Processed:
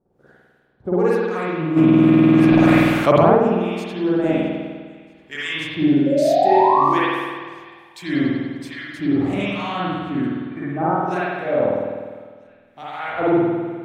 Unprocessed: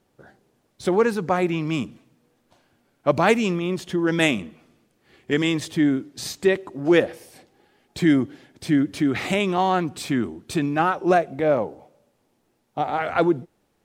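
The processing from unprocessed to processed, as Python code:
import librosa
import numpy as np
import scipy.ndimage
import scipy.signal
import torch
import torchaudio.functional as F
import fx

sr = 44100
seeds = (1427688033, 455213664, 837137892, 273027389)

p1 = fx.harmonic_tremolo(x, sr, hz=1.2, depth_pct=100, crossover_hz=1100.0)
p2 = fx.spec_paint(p1, sr, seeds[0], shape='rise', start_s=6.06, length_s=0.78, low_hz=530.0, high_hz=1200.0, level_db=-21.0)
p3 = fx.brickwall_lowpass(p2, sr, high_hz=2400.0, at=(10.26, 10.99))
p4 = p3 + fx.echo_wet_highpass(p3, sr, ms=647, feedback_pct=46, hz=1700.0, wet_db=-22.0, dry=0)
p5 = fx.rev_spring(p4, sr, rt60_s=1.6, pass_ms=(50,), chirp_ms=45, drr_db=-9.0)
p6 = fx.env_flatten(p5, sr, amount_pct=100, at=(1.76, 3.35), fade=0.02)
y = F.gain(torch.from_numpy(p6), -4.0).numpy()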